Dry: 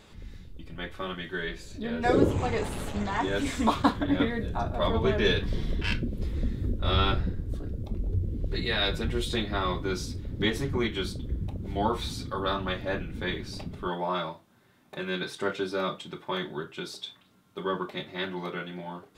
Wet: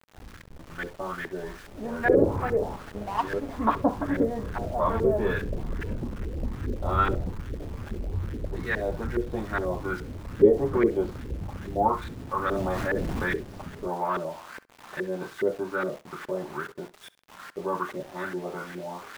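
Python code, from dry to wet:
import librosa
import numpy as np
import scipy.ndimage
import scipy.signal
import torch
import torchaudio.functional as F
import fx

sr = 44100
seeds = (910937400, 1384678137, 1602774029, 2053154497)

y = x + 0.5 * 10.0 ** (-20.0 / 20.0) * np.diff(np.sign(x), prepend=np.sign(x[:1]))
y = fx.filter_lfo_lowpass(y, sr, shape='saw_up', hz=2.4, low_hz=400.0, high_hz=1800.0, q=3.3)
y = fx.power_curve(y, sr, exponent=1.4, at=(2.76, 3.49))
y = fx.peak_eq(y, sr, hz=470.0, db=10.5, octaves=1.1, at=(10.39, 11.11))
y = np.where(np.abs(y) >= 10.0 ** (-41.0 / 20.0), y, 0.0)
y = fx.room_flutter(y, sr, wall_m=11.4, rt60_s=0.21)
y = fx.env_flatten(y, sr, amount_pct=70, at=(12.51, 13.36))
y = F.gain(torch.from_numpy(y), -2.5).numpy()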